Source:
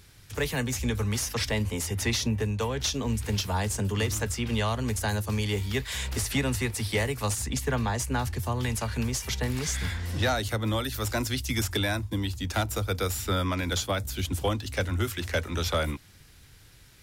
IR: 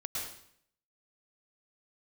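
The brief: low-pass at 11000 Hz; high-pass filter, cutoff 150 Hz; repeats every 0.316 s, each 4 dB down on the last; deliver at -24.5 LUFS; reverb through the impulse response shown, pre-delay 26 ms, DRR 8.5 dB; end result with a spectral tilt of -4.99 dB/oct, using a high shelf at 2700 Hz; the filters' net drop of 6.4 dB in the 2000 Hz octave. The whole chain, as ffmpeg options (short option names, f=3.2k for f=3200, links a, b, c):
-filter_complex "[0:a]highpass=150,lowpass=11k,equalizer=f=2k:t=o:g=-5,highshelf=f=2.7k:g=-8,aecho=1:1:316|632|948|1264|1580|1896|2212|2528|2844:0.631|0.398|0.25|0.158|0.0994|0.0626|0.0394|0.0249|0.0157,asplit=2[a][b];[1:a]atrim=start_sample=2205,adelay=26[c];[b][c]afir=irnorm=-1:irlink=0,volume=-11dB[d];[a][d]amix=inputs=2:normalize=0,volume=6dB"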